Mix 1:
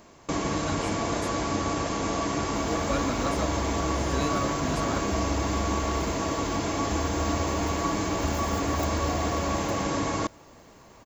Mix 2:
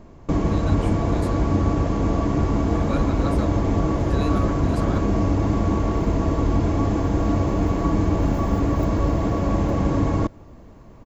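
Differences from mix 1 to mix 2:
first sound: add tilt -4 dB/oct; second sound -9.5 dB

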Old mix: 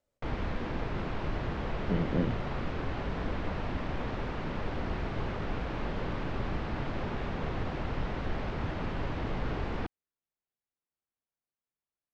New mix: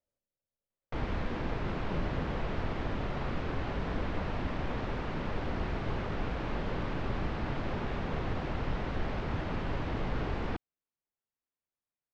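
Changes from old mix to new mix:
speech -9.5 dB; background: entry +0.70 s

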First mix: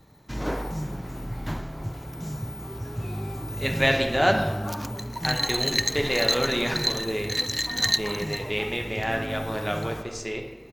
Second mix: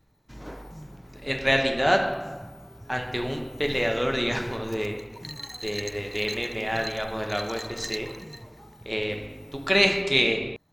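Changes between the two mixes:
speech: entry -2.35 s; background -11.5 dB

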